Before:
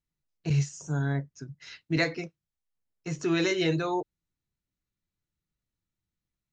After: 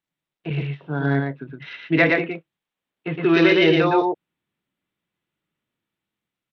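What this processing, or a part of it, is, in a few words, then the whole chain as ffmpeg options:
Bluetooth headset: -af "highpass=210,aecho=1:1:115:0.708,dynaudnorm=f=250:g=7:m=5dB,aresample=8000,aresample=44100,volume=5dB" -ar 32000 -c:a sbc -b:a 64k

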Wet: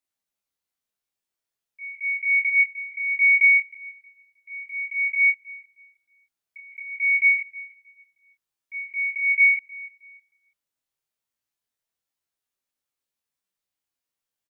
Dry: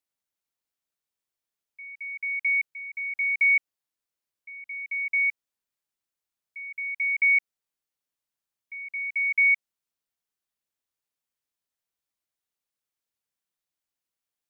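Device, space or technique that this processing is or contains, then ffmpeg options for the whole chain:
double-tracked vocal: -filter_complex "[0:a]asettb=1/sr,asplit=3[a][b][c];[a]atrim=end=1.944[d];[b]atrim=start=1.94:end=3.43,asetpts=PTS-STARTPTS,afade=t=in:d=0.004:c=qsin,afade=t=out:st=1.486:d=0.004:c=qsin,equalizer=f=2.2k:w=1.5:g=4[e];[c]atrim=start=3.426[f];[d][e]acrossfade=d=0.004:c1=hsin:c2=qsin[g];[g][f]acrossfade=d=0.004:c1=qsin:c2=hsin,asplit=2[h][i];[i]adelay=26,volume=-3dB[j];[h][j]amix=inputs=2:normalize=0,asplit=2[k][l];[l]adelay=314,lowpass=f=2.2k:p=1,volume=-18dB,asplit=2[m][n];[n]adelay=314,lowpass=f=2.2k:p=1,volume=0.34,asplit=2[o][p];[p]adelay=314,lowpass=f=2.2k:p=1,volume=0.34[q];[k][m][o][q]amix=inputs=4:normalize=0,flanger=delay=15:depth=4.2:speed=0.15,volume=2.5dB"

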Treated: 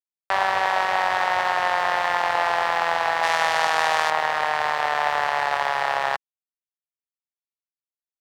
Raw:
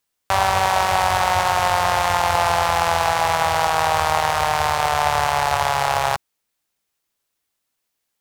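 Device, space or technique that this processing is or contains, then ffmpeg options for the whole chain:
pocket radio on a weak battery: -filter_complex "[0:a]asettb=1/sr,asplit=3[a][b][c];[a]atrim=end=3.234[d];[b]atrim=start=3.23:end=4.1,asetpts=PTS-STARTPTS,afade=t=in:d=0.004:c=qsin,afade=t=out:st=0.866:d=0.004:c=qsin,aemphasis=mode=production:type=75kf[e];[c]atrim=start=4.096[f];[d][e]acrossfade=d=0.004:c1=hsin:c2=qsin[g];[g][f]acrossfade=d=0.004:c1=qsin:c2=hsin,highpass=270,lowpass=3.7k,aeval=exprs='sgn(val(0))*max(abs(val(0))-0.0158,0)':c=same,equalizer=f=1.8k:t=o:w=0.26:g=8,volume=-3dB"

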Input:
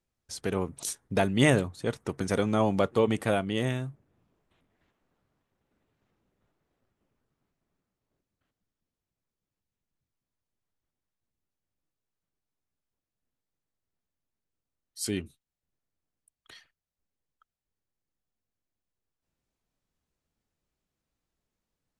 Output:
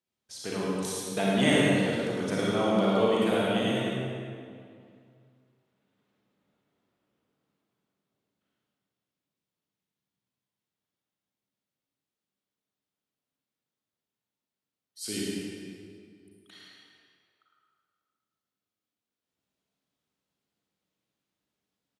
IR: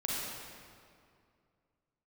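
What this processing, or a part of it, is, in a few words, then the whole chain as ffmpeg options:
PA in a hall: -filter_complex "[0:a]highpass=150,equalizer=f=3.4k:t=o:w=0.87:g=5,aecho=1:1:107:0.447[a];[1:a]atrim=start_sample=2205[b];[a][b]afir=irnorm=-1:irlink=0,volume=-5.5dB"

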